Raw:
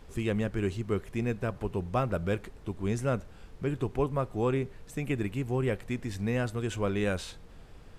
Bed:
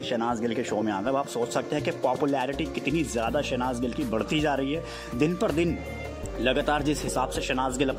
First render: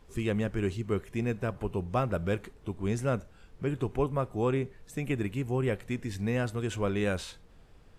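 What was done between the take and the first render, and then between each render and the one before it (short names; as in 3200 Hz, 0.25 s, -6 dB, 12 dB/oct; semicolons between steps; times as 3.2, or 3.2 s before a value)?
noise print and reduce 6 dB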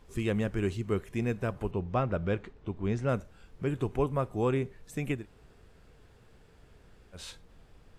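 1.71–3.09 air absorption 130 m; 5.18–7.2 room tone, crossfade 0.16 s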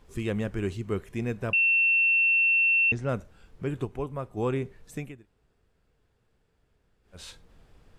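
1.53–2.92 bleep 2700 Hz -19 dBFS; 3.85–4.37 gain -4.5 dB; 4.97–7.17 dip -12.5 dB, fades 0.14 s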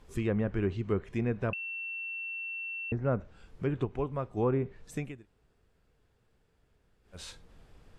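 treble ducked by the level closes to 1400 Hz, closed at -23.5 dBFS; dynamic EQ 3100 Hz, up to -6 dB, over -49 dBFS, Q 2.2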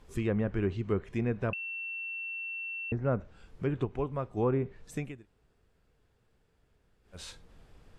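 nothing audible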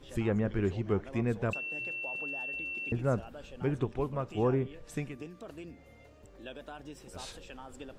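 add bed -21 dB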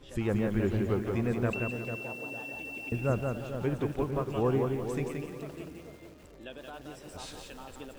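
tape echo 0.449 s, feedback 32%, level -6.5 dB, low-pass 1200 Hz; lo-fi delay 0.175 s, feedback 35%, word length 9-bit, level -4 dB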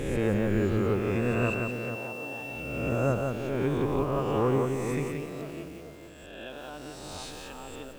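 spectral swells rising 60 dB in 1.48 s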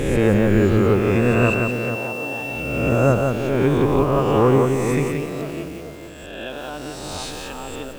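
gain +10 dB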